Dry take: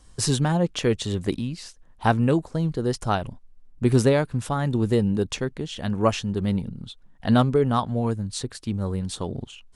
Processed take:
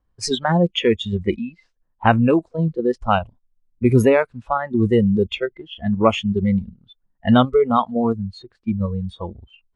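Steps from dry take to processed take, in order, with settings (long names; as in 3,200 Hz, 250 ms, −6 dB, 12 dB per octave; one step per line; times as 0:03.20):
noise reduction from a noise print of the clip's start 23 dB
low-pass that shuts in the quiet parts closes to 1,600 Hz, open at −17.5 dBFS
high-shelf EQ 3,200 Hz +5 dB
in parallel at −2 dB: output level in coarse steps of 14 dB
on the sum: level +3.5 dB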